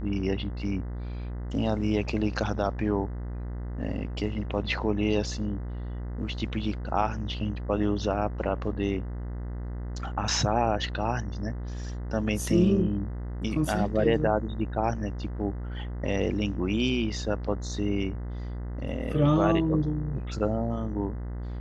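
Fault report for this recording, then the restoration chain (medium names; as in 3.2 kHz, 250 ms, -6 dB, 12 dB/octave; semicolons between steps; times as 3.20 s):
buzz 60 Hz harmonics 34 -34 dBFS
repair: de-hum 60 Hz, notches 34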